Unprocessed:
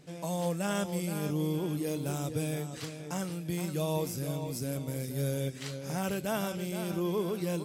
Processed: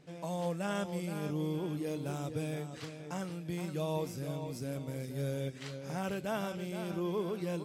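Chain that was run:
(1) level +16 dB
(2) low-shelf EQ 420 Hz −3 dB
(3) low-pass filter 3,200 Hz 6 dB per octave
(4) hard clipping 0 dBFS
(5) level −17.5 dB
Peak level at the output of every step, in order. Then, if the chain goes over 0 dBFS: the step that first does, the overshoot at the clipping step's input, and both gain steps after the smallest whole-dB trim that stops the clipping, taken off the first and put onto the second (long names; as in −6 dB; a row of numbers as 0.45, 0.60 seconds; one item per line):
−3.0, −4.0, −5.0, −5.0, −22.5 dBFS
no step passes full scale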